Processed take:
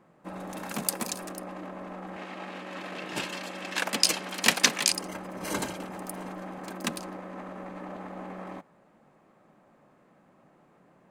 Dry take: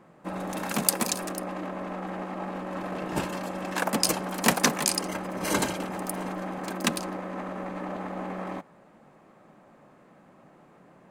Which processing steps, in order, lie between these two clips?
2.16–4.92 weighting filter D; gain -5.5 dB

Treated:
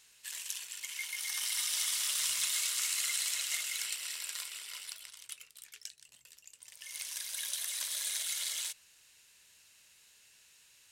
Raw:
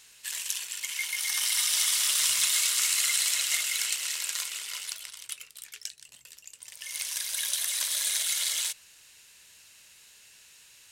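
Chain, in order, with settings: 3.83–5.07 notch 6500 Hz, Q 8.3; gain -7.5 dB

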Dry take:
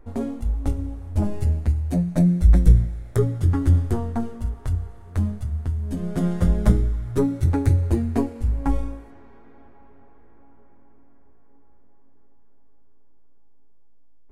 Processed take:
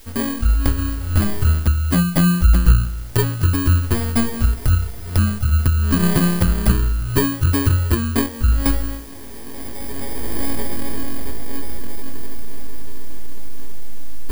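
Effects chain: FFT order left unsorted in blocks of 32 samples; recorder AGC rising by 17 dB/s; added noise white -49 dBFS; gain +1 dB

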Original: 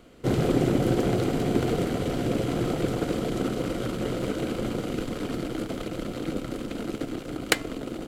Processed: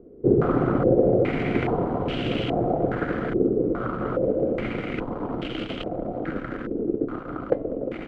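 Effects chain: CVSD 64 kbps; stepped low-pass 2.4 Hz 410–2900 Hz

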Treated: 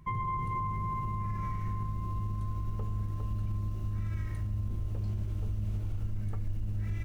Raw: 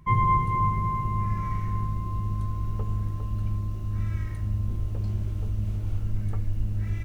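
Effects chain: limiter -23.5 dBFS, peak gain reduction 12 dB; gain -2.5 dB

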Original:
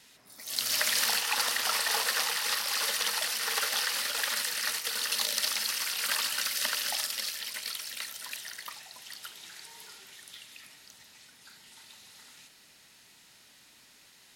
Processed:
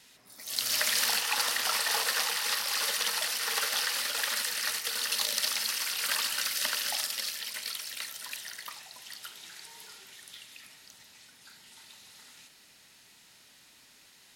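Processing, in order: de-hum 73.32 Hz, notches 30

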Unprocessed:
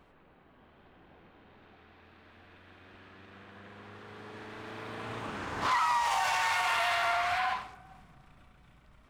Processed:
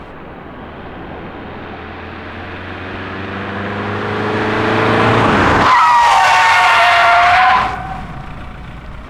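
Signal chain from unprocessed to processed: LPF 3100 Hz 6 dB/oct; maximiser +31 dB; gain -1 dB

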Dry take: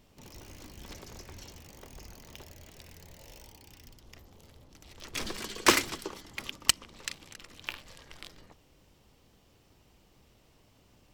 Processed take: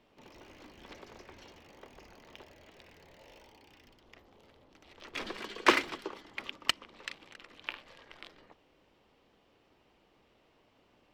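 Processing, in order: three-band isolator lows -13 dB, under 240 Hz, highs -18 dB, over 3800 Hz

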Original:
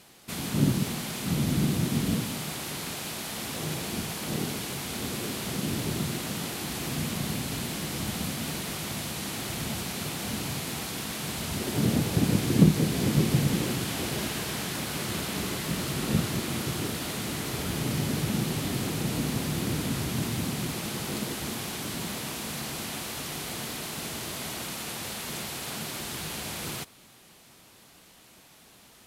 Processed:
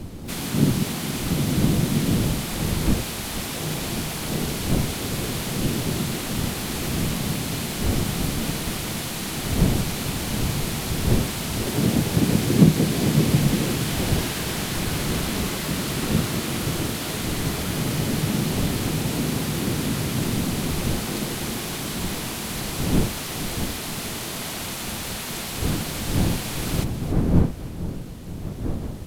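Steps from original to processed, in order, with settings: wind noise 190 Hz -33 dBFS; split-band echo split 2100 Hz, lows 0.469 s, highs 0.284 s, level -13 dB; harmoniser +7 st -13 dB; gain +4 dB

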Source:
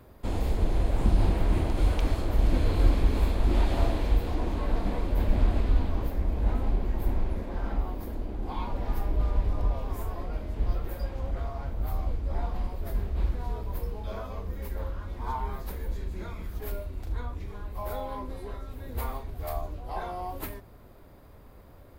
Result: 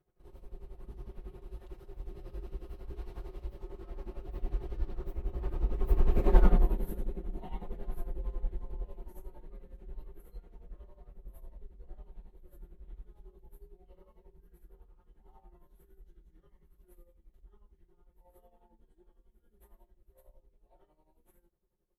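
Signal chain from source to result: Doppler pass-by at 6.36, 56 m/s, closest 7.6 m; thirty-one-band EQ 400 Hz +10 dB, 5000 Hz -6 dB, 12500 Hz +7 dB; tremolo 11 Hz, depth 77%; low shelf 150 Hz +6.5 dB; comb 5.6 ms, depth 69%; gain +7 dB

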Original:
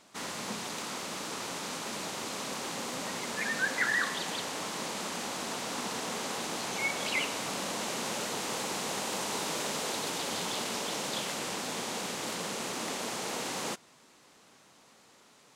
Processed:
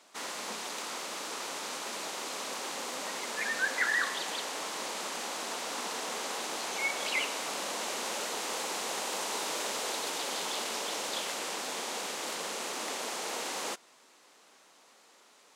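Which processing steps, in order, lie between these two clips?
HPF 360 Hz 12 dB/oct

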